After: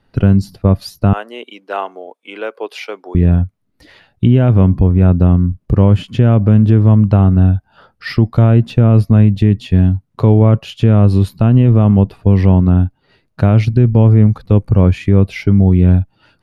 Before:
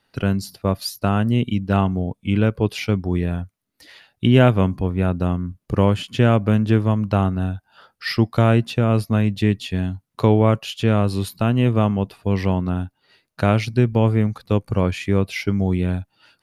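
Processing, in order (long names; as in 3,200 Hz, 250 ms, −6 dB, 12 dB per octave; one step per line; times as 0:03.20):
0:01.13–0:03.15: Bessel high-pass filter 700 Hz, order 6
spectral tilt −3 dB per octave
boost into a limiter +5.5 dB
level −1 dB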